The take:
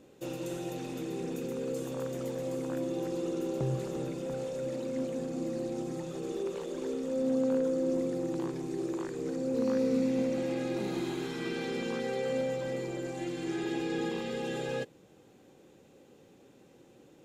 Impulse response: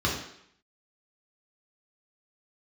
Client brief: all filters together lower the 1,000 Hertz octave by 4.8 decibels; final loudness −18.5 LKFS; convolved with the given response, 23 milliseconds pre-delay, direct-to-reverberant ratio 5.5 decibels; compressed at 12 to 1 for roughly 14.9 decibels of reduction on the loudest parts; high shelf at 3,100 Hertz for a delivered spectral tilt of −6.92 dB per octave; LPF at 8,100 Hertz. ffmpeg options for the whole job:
-filter_complex "[0:a]lowpass=8100,equalizer=frequency=1000:width_type=o:gain=-6,highshelf=frequency=3100:gain=-6.5,acompressor=threshold=-41dB:ratio=12,asplit=2[link_01][link_02];[1:a]atrim=start_sample=2205,adelay=23[link_03];[link_02][link_03]afir=irnorm=-1:irlink=0,volume=-17.5dB[link_04];[link_01][link_04]amix=inputs=2:normalize=0,volume=24dB"

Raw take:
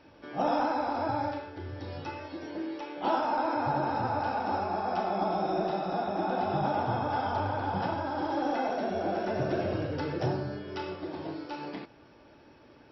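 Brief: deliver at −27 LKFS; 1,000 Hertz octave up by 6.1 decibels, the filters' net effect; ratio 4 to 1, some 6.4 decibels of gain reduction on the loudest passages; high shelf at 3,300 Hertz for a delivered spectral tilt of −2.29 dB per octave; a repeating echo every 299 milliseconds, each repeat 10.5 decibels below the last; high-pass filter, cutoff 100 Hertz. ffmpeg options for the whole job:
ffmpeg -i in.wav -af "highpass=100,equalizer=frequency=1000:width_type=o:gain=8.5,highshelf=frequency=3300:gain=-6.5,acompressor=threshold=-27dB:ratio=4,aecho=1:1:299|598|897:0.299|0.0896|0.0269,volume=4dB" out.wav

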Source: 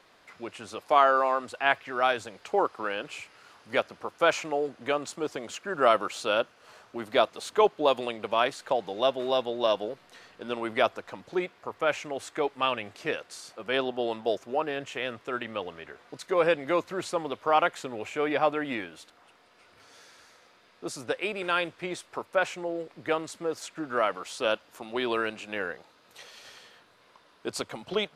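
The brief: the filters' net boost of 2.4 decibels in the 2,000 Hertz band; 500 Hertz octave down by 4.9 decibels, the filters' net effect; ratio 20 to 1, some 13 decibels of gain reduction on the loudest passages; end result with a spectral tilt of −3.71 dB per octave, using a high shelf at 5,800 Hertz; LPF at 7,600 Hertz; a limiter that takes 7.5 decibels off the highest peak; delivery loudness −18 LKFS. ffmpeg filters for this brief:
ffmpeg -i in.wav -af "lowpass=7600,equalizer=frequency=500:width_type=o:gain=-6.5,equalizer=frequency=2000:width_type=o:gain=4.5,highshelf=frequency=5800:gain=-6.5,acompressor=threshold=-29dB:ratio=20,volume=20dB,alimiter=limit=-3.5dB:level=0:latency=1" out.wav

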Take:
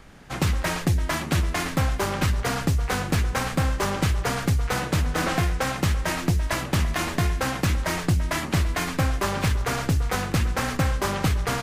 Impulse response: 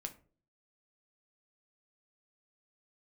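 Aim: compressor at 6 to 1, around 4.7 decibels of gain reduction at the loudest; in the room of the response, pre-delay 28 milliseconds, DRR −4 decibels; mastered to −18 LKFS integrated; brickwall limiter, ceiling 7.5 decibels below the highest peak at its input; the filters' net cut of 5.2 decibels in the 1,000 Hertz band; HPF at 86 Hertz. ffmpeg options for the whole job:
-filter_complex "[0:a]highpass=86,equalizer=frequency=1000:width_type=o:gain=-7,acompressor=threshold=-24dB:ratio=6,alimiter=limit=-22dB:level=0:latency=1,asplit=2[link_01][link_02];[1:a]atrim=start_sample=2205,adelay=28[link_03];[link_02][link_03]afir=irnorm=-1:irlink=0,volume=6.5dB[link_04];[link_01][link_04]amix=inputs=2:normalize=0,volume=8.5dB"

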